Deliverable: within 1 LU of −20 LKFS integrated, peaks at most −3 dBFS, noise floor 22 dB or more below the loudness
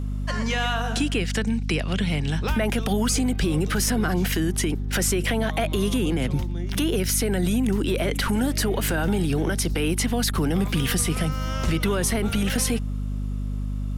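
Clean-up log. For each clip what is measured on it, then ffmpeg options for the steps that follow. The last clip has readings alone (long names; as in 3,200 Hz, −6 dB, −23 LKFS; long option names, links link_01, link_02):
mains hum 50 Hz; hum harmonics up to 250 Hz; level of the hum −25 dBFS; integrated loudness −24.0 LKFS; sample peak −11.5 dBFS; target loudness −20.0 LKFS
→ -af "bandreject=frequency=50:width_type=h:width=4,bandreject=frequency=100:width_type=h:width=4,bandreject=frequency=150:width_type=h:width=4,bandreject=frequency=200:width_type=h:width=4,bandreject=frequency=250:width_type=h:width=4"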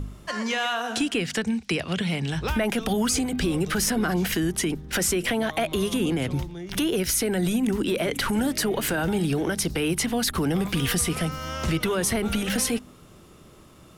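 mains hum none found; integrated loudness −25.0 LKFS; sample peak −13.5 dBFS; target loudness −20.0 LKFS
→ -af "volume=5dB"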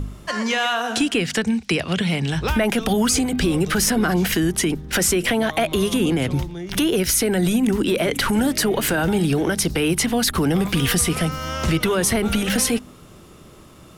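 integrated loudness −20.0 LKFS; sample peak −8.5 dBFS; background noise floor −45 dBFS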